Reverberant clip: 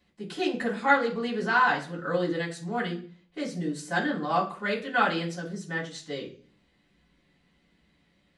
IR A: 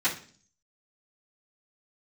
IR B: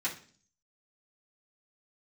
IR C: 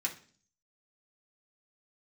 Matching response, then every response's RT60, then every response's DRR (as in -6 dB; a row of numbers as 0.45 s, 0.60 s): A; 0.45 s, 0.45 s, 0.45 s; -14.0 dB, -9.0 dB, -2.0 dB